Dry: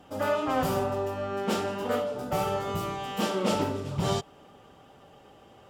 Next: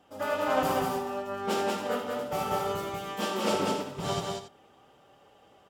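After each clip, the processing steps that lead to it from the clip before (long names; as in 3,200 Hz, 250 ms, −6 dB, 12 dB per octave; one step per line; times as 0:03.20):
low-shelf EQ 220 Hz −8 dB
loudspeakers that aren't time-aligned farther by 26 metres −7 dB, 65 metres −2 dB, 94 metres −9 dB
expander for the loud parts 1.5 to 1, over −36 dBFS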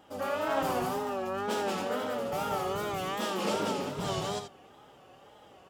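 in parallel at −2.5 dB: compressor whose output falls as the input rises −37 dBFS, ratio −1
on the sum: tape wow and flutter 96 cents
level −4 dB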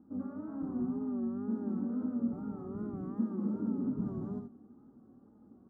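high shelf with overshoot 1,900 Hz −12.5 dB, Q 3
brickwall limiter −24.5 dBFS, peak gain reduction 9 dB
drawn EQ curve 160 Hz 0 dB, 230 Hz +15 dB, 550 Hz −17 dB, 3,100 Hz −28 dB
level −2 dB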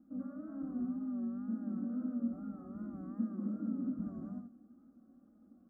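phaser with its sweep stopped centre 610 Hz, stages 8
level −2.5 dB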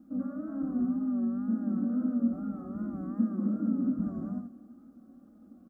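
far-end echo of a speakerphone 320 ms, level −22 dB
level +8 dB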